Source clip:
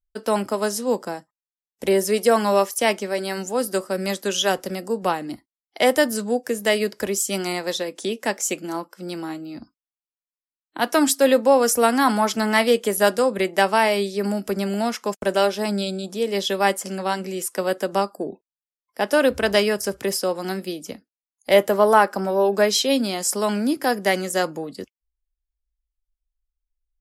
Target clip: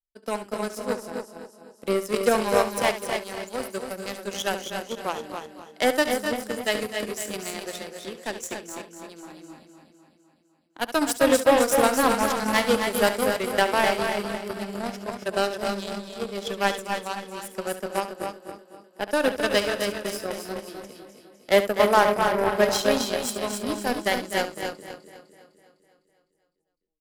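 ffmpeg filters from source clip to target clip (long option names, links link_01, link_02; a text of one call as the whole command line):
ffmpeg -i in.wav -filter_complex "[0:a]asplit=2[link_01][link_02];[link_02]aecho=0:1:253|506|759|1012|1265|1518|1771|2024:0.501|0.296|0.174|0.103|0.0607|0.0358|0.0211|0.0125[link_03];[link_01][link_03]amix=inputs=2:normalize=0,aeval=exprs='0.708*(cos(1*acos(clip(val(0)/0.708,-1,1)))-cos(1*PI/2))+0.0794*(cos(7*acos(clip(val(0)/0.708,-1,1)))-cos(7*PI/2))':channel_layout=same,asplit=2[link_04][link_05];[link_05]aecho=0:1:69.97|277:0.251|0.447[link_06];[link_04][link_06]amix=inputs=2:normalize=0,volume=-3.5dB" out.wav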